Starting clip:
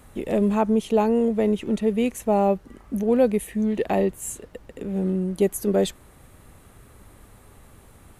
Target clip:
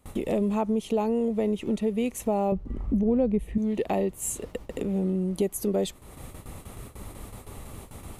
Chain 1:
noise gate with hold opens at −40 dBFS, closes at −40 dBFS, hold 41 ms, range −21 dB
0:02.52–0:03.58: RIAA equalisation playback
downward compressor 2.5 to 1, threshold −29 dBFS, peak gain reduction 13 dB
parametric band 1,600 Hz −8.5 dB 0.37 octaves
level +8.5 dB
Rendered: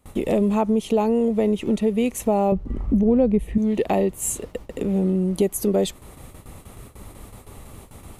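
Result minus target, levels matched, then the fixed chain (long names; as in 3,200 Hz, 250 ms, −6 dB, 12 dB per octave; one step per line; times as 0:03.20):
downward compressor: peak gain reduction −5.5 dB
noise gate with hold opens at −40 dBFS, closes at −40 dBFS, hold 41 ms, range −21 dB
0:02.52–0:03.58: RIAA equalisation playback
downward compressor 2.5 to 1, threshold −38.5 dBFS, peak gain reduction 18.5 dB
parametric band 1,600 Hz −8.5 dB 0.37 octaves
level +8.5 dB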